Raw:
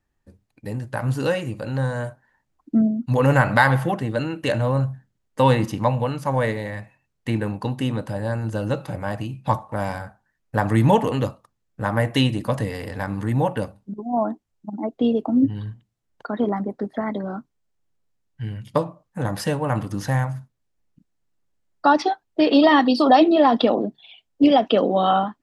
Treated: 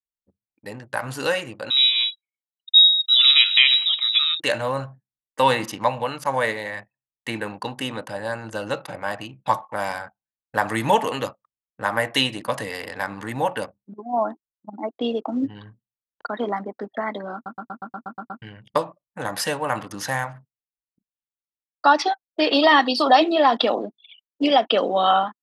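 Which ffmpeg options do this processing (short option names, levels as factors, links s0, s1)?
-filter_complex "[0:a]asettb=1/sr,asplit=3[s0][s1][s2];[s0]atrim=end=1.704[s3];[s1]atrim=start=1.7:end=4.4,asetpts=PTS-STARTPTS,afade=t=in:d=0.004:c=qsin,afade=t=out:st=2.696:d=0.004:c=qsin,lowpass=f=3400:t=q:w=0.5098,lowpass=f=3400:t=q:w=0.6013,lowpass=f=3400:t=q:w=0.9,lowpass=f=3400:t=q:w=2.563,afreqshift=-4000[s4];[s2]atrim=start=4.396[s5];[s3][s4]acrossfade=d=0.004:c1=hsin:c2=qsin[s6];[s6][s5]acrossfade=d=0.004:c1=qsin:c2=hsin,asplit=10[s7][s8][s9][s10][s11][s12][s13][s14][s15][s16];[s7]atrim=end=17.462[s17];[s8]atrim=start=17.338:end=17.462[s18];[s9]atrim=start=17.338:end=17.462[s19];[s10]atrim=start=17.338:end=17.462[s20];[s11]atrim=start=17.338:end=17.462[s21];[s12]atrim=start=17.338:end=17.462[s22];[s13]atrim=start=17.338:end=17.462[s23];[s14]atrim=start=17.338:end=17.462[s24];[s15]atrim=start=17.338:end=17.462[s25];[s16]atrim=start=18.418[s26];[s17][s18]acrossfade=d=0.004:c1=hsin:c2=hsin[s27];[s27][s19]acrossfade=d=0.004:c1=hsin:c2=hsin[s28];[s28][s20]acrossfade=d=0.004:c1=hsin:c2=hsin[s29];[s29][s21]acrossfade=d=0.004:c1=hsin:c2=hsin[s30];[s30][s22]acrossfade=d=0.004:c1=hsin:c2=hsin[s31];[s31][s23]acrossfade=d=0.004:c1=hsin:c2=hsin[s32];[s32][s24]acrossfade=d=0.004:c1=hsin:c2=hsin[s33];[s33][s25]acrossfade=d=0.004:c1=hsin:c2=hsin[s34];[s34][s26]acrossfade=d=0.004:c1=hsin:c2=hsin,anlmdn=0.251,highpass=f=1100:p=1,dynaudnorm=f=220:g=3:m=2"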